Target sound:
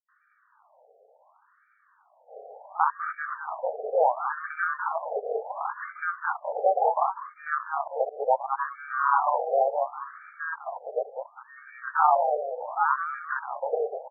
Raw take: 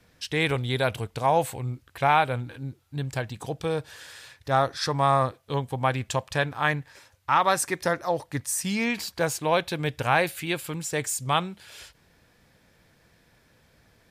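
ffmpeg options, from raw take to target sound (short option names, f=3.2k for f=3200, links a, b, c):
-filter_complex "[0:a]areverse,asplit=2[a][b];[b]acompressor=threshold=-29dB:ratio=6,volume=3dB[c];[a][c]amix=inputs=2:normalize=0,afftfilt=real='re*between(b*sr/4096,190,11000)':imag='im*between(b*sr/4096,190,11000)':win_size=4096:overlap=0.75,acrusher=samples=21:mix=1:aa=0.000001,asplit=2[d][e];[e]asplit=5[f][g][h][i][j];[f]adelay=200,afreqshift=-100,volume=-5dB[k];[g]adelay=400,afreqshift=-200,volume=-12.3dB[l];[h]adelay=600,afreqshift=-300,volume=-19.7dB[m];[i]adelay=800,afreqshift=-400,volume=-27dB[n];[j]adelay=1000,afreqshift=-500,volume=-34.3dB[o];[k][l][m][n][o]amix=inputs=5:normalize=0[p];[d][p]amix=inputs=2:normalize=0,afftfilt=real='re*between(b*sr/1024,560*pow(1700/560,0.5+0.5*sin(2*PI*0.7*pts/sr))/1.41,560*pow(1700/560,0.5+0.5*sin(2*PI*0.7*pts/sr))*1.41)':imag='im*between(b*sr/1024,560*pow(1700/560,0.5+0.5*sin(2*PI*0.7*pts/sr))/1.41,560*pow(1700/560,0.5+0.5*sin(2*PI*0.7*pts/sr))*1.41)':win_size=1024:overlap=0.75"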